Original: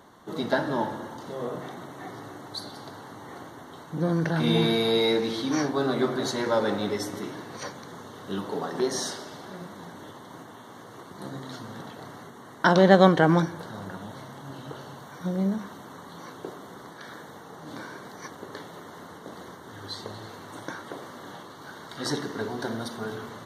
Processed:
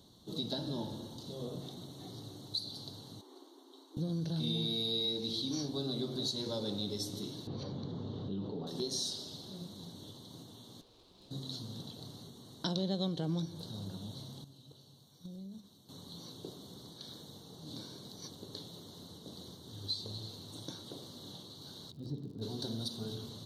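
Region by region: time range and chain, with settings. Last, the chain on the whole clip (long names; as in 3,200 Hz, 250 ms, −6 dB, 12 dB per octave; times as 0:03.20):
0:03.21–0:03.97: Chebyshev high-pass with heavy ripple 260 Hz, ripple 9 dB + low-shelf EQ 360 Hz +5.5 dB
0:07.47–0:08.67: head-to-tape spacing loss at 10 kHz 41 dB + envelope flattener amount 70%
0:10.81–0:11.31: bass and treble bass −15 dB, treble −11 dB + tube saturation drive 49 dB, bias 0.65
0:14.44–0:15.89: noise gate −34 dBFS, range −13 dB + high-shelf EQ 5,800 Hz +5 dB + downward compressor 16 to 1, threshold −39 dBFS
0:21.90–0:22.41: resonant band-pass 100 Hz, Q 0.54 + surface crackle 130 per second −47 dBFS
whole clip: drawn EQ curve 110 Hz 0 dB, 510 Hz −11 dB, 1,900 Hz −26 dB, 4,000 Hz +6 dB, 6,100 Hz −3 dB; downward compressor 3 to 1, threshold −34 dBFS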